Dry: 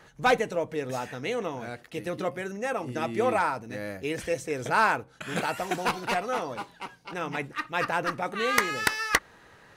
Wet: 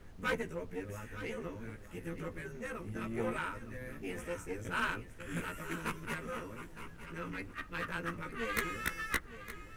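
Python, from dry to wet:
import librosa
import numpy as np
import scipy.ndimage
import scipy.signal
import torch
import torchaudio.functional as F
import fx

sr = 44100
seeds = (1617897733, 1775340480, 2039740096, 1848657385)

p1 = fx.frame_reverse(x, sr, frame_ms=35.0)
p2 = fx.peak_eq(p1, sr, hz=2000.0, db=-3.0, octaves=3.0)
p3 = fx.fixed_phaser(p2, sr, hz=1800.0, stages=4)
p4 = fx.tube_stage(p3, sr, drive_db=25.0, bias=0.75)
p5 = fx.dmg_noise_colour(p4, sr, seeds[0], colour='brown', level_db=-53.0)
p6 = p5 + fx.echo_single(p5, sr, ms=913, db=-13.0, dry=0)
y = p6 * librosa.db_to_amplitude(2.0)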